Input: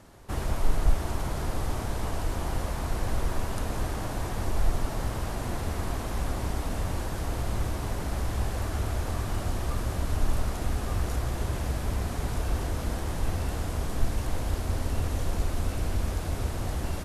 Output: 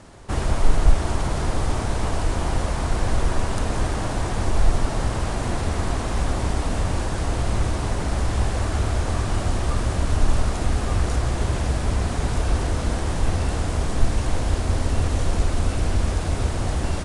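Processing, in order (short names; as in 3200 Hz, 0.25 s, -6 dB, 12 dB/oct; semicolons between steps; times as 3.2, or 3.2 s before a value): gain +7 dB; Vorbis 64 kbps 22050 Hz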